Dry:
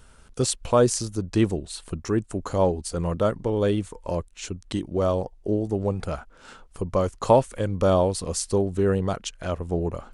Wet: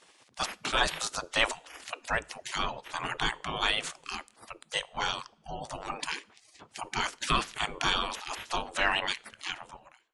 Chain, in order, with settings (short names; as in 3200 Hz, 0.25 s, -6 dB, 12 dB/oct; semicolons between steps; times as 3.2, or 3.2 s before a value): ending faded out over 0.83 s; de-hum 53.78 Hz, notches 4; spectral gate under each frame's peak -25 dB weak; 8.5–9.1 dynamic EQ 2800 Hz, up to +7 dB, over -59 dBFS, Q 1.3; AGC gain up to 5.5 dB; sample leveller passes 1; spectral gate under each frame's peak -25 dB strong; in parallel at -8.5 dB: hard clip -28.5 dBFS, distortion -11 dB; on the sum: air absorption 60 m; on a send at -19 dB: reverb, pre-delay 3 ms; on the sum: gain +3.5 dB